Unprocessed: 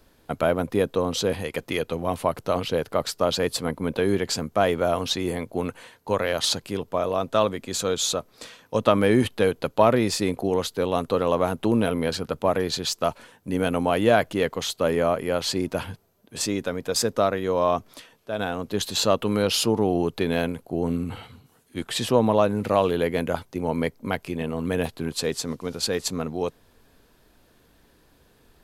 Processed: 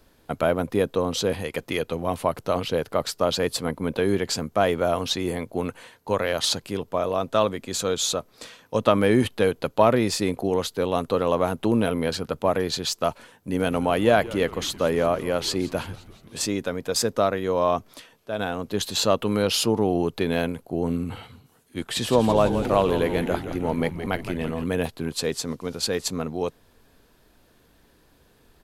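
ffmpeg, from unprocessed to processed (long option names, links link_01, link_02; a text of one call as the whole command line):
ffmpeg -i in.wav -filter_complex "[0:a]asplit=3[link_01][link_02][link_03];[link_01]afade=type=out:start_time=13.59:duration=0.02[link_04];[link_02]asplit=7[link_05][link_06][link_07][link_08][link_09][link_10][link_11];[link_06]adelay=171,afreqshift=-130,volume=-18.5dB[link_12];[link_07]adelay=342,afreqshift=-260,volume=-22.7dB[link_13];[link_08]adelay=513,afreqshift=-390,volume=-26.8dB[link_14];[link_09]adelay=684,afreqshift=-520,volume=-31dB[link_15];[link_10]adelay=855,afreqshift=-650,volume=-35.1dB[link_16];[link_11]adelay=1026,afreqshift=-780,volume=-39.3dB[link_17];[link_05][link_12][link_13][link_14][link_15][link_16][link_17]amix=inputs=7:normalize=0,afade=type=in:start_time=13.59:duration=0.02,afade=type=out:start_time=16.47:duration=0.02[link_18];[link_03]afade=type=in:start_time=16.47:duration=0.02[link_19];[link_04][link_18][link_19]amix=inputs=3:normalize=0,asettb=1/sr,asplit=3[link_20][link_21][link_22];[link_20]atrim=end=21.804[link_23];[link_21]atrim=start=21.8:end=24.64,asetpts=PTS-STARTPTS,afade=type=in:duration=0.004:curve=qsin,afade=type=out:start_time=2.836:duration=0.004:curve=qsin,asplit=9[link_24][link_25][link_26][link_27][link_28][link_29][link_30][link_31][link_32];[link_25]adelay=167,afreqshift=-79,volume=-9.5dB[link_33];[link_26]adelay=334,afreqshift=-158,volume=-13.4dB[link_34];[link_27]adelay=501,afreqshift=-237,volume=-17.3dB[link_35];[link_28]adelay=668,afreqshift=-316,volume=-21.1dB[link_36];[link_29]adelay=835,afreqshift=-395,volume=-25dB[link_37];[link_30]adelay=1002,afreqshift=-474,volume=-28.9dB[link_38];[link_31]adelay=1169,afreqshift=-553,volume=-32.8dB[link_39];[link_32]adelay=1336,afreqshift=-632,volume=-36.6dB[link_40];[link_24][link_33][link_34][link_35][link_36][link_37][link_38][link_39][link_40]amix=inputs=9:normalize=0,atrim=end_sample=125244[link_41];[link_22]atrim=start=24.636[link_42];[link_23][link_41]acrossfade=duration=0.004:curve1=hsin:curve2=qsin[link_43];[link_43][link_42]acrossfade=duration=0.004:curve1=qsin:curve2=hsin" out.wav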